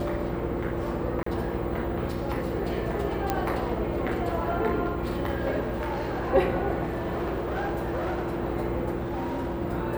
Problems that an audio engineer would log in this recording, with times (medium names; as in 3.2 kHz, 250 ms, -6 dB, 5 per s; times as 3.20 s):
buzz 60 Hz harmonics 9 -33 dBFS
1.23–1.26 s: dropout 34 ms
3.30 s: pop -11 dBFS
5.60–6.32 s: clipped -26 dBFS
6.83–8.40 s: clipped -25 dBFS
8.98–9.62 s: clipped -26.5 dBFS